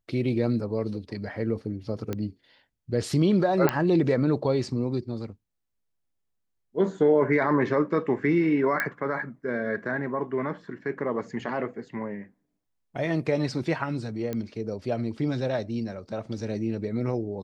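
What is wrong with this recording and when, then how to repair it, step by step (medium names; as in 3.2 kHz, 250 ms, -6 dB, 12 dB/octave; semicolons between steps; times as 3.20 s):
2.13 s: pop -17 dBFS
3.69 s: pop -9 dBFS
8.80 s: pop -12 dBFS
14.33 s: pop -18 dBFS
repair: de-click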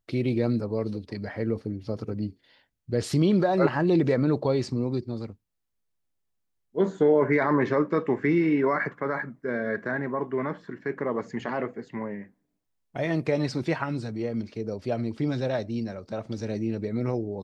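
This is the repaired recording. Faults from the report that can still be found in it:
3.69 s: pop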